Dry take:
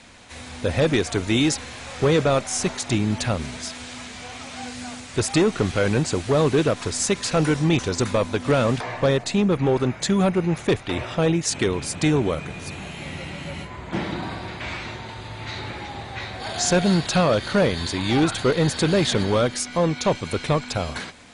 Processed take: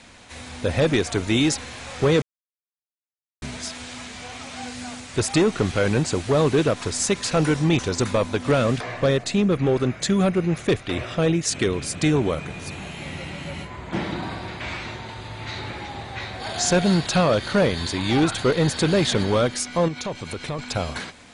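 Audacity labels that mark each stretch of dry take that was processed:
2.220000	3.420000	silence
8.570000	12.150000	parametric band 890 Hz −8.5 dB 0.29 octaves
19.880000	20.590000	downward compressor 2.5 to 1, threshold −29 dBFS

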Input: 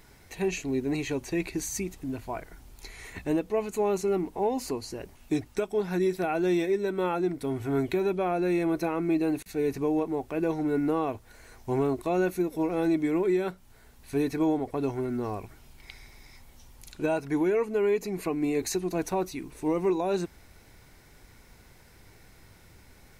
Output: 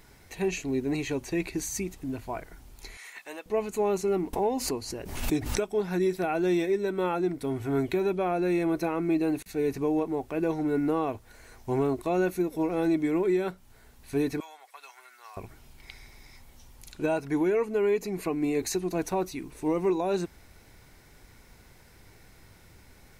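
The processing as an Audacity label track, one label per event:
2.970000	3.460000	high-pass filter 960 Hz
4.330000	5.680000	background raised ahead of every attack at most 64 dB per second
14.400000	15.370000	Bessel high-pass filter 1,600 Hz, order 4

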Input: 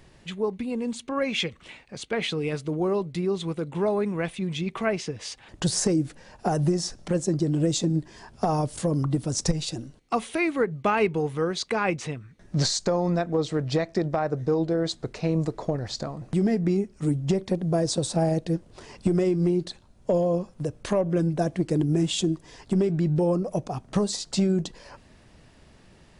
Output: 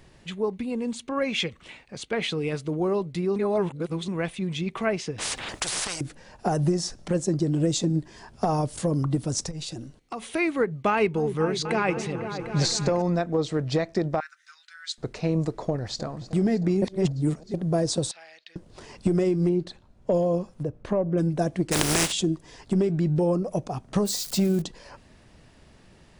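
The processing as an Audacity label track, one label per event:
3.360000	4.080000	reverse
5.180000	6.010000	every bin compressed towards the loudest bin 10 to 1
9.450000	10.260000	downward compressor 4 to 1, threshold −31 dBFS
10.900000	13.020000	echo whose low-pass opens from repeat to repeat 250 ms, low-pass from 400 Hz, each repeat up 2 octaves, level −6 dB
14.200000	14.980000	Chebyshev high-pass filter 1,400 Hz, order 5
15.660000	16.200000	delay throw 310 ms, feedback 75%, level −16.5 dB
16.820000	17.540000	reverse
18.110000	18.560000	flat-topped band-pass 2,700 Hz, Q 1.2
19.490000	20.120000	high-shelf EQ 4,900 Hz −11.5 dB
20.630000	21.180000	low-pass filter 1,000 Hz 6 dB per octave
21.710000	22.110000	compressing power law on the bin magnitudes exponent 0.31
24.050000	24.620000	spike at every zero crossing of −29 dBFS

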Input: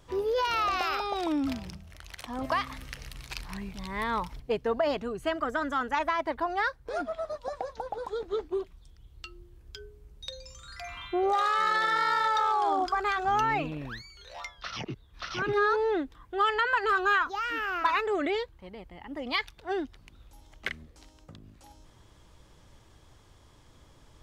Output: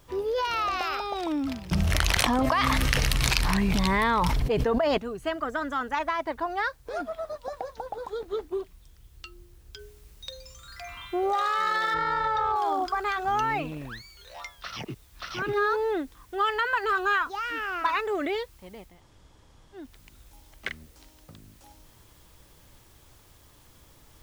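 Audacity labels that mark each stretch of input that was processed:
1.710000	4.980000	envelope flattener amount 100%
9.790000	9.790000	noise floor change −67 dB −61 dB
11.940000	12.560000	RIAA equalisation playback
18.920000	19.840000	fill with room tone, crossfade 0.24 s

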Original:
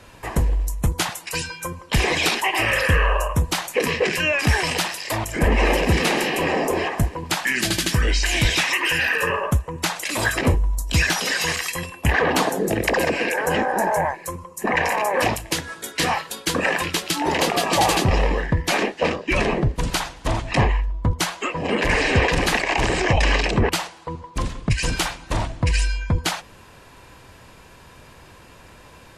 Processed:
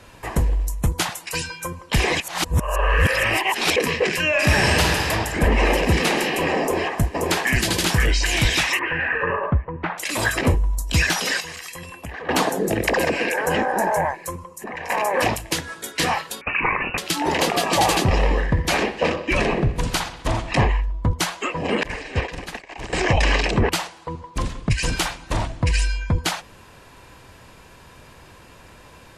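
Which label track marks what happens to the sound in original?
2.200000	3.760000	reverse
4.300000	5.090000	thrown reverb, RT60 2.6 s, DRR −2 dB
6.610000	7.520000	delay throw 530 ms, feedback 40%, level −2.5 dB
8.790000	9.980000	low-pass filter 2,100 Hz 24 dB per octave
11.400000	12.290000	downward compressor 5 to 1, threshold −32 dBFS
14.480000	14.900000	downward compressor 2.5 to 1, threshold −34 dBFS
16.410000	16.980000	voice inversion scrambler carrier 2,800 Hz
18.160000	20.520000	bucket-brigade delay 63 ms, stages 2,048, feedback 64%, level −14 dB
21.830000	22.930000	downward expander −11 dBFS

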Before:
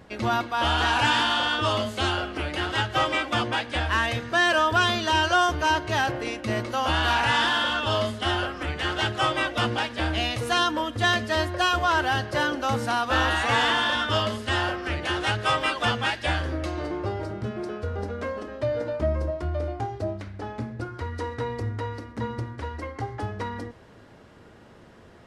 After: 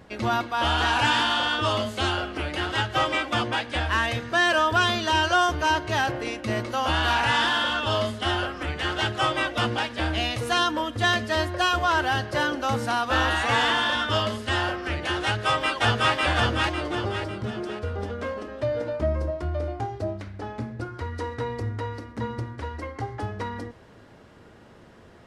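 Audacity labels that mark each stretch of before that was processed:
10.790000	11.290000	floating-point word with a short mantissa of 8 bits
15.250000	16.140000	delay throw 550 ms, feedback 40%, level −0.5 dB

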